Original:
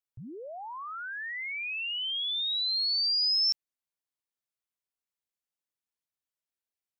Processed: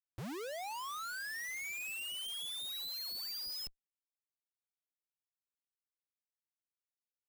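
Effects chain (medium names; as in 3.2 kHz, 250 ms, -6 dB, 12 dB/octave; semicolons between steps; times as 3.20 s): speed mistake 25 fps video run at 24 fps; Chebyshev shaper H 2 -15 dB, 5 -27 dB, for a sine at -21.5 dBFS; Schmitt trigger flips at -42 dBFS; trim -8 dB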